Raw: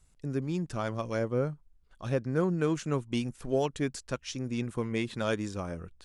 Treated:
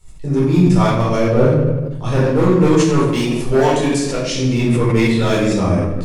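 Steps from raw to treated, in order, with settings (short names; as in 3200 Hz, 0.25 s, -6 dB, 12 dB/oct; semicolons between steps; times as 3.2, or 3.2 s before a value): bell 1500 Hz -9.5 dB 0.21 oct; hard clip -25 dBFS, distortion -13 dB; 2.13–4.33 tone controls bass -6 dB, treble +1 dB; shoebox room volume 440 m³, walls mixed, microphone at 4.3 m; sustainer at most 37 dB/s; gain +7 dB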